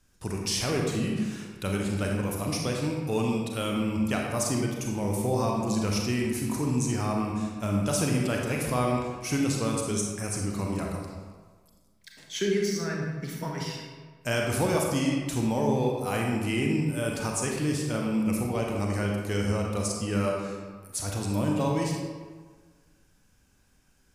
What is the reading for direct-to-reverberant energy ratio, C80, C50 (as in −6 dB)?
−1.0 dB, 3.0 dB, 1.0 dB